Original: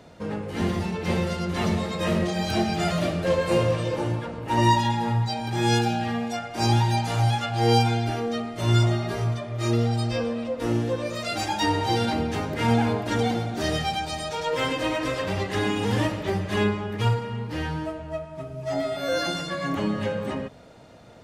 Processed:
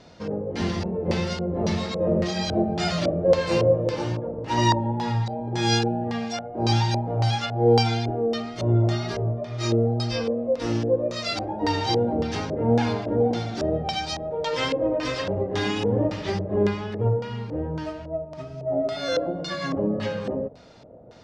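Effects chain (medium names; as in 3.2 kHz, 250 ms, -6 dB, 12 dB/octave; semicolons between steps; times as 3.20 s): wow and flutter 27 cents; LFO low-pass square 1.8 Hz 540–5300 Hz; trim -1 dB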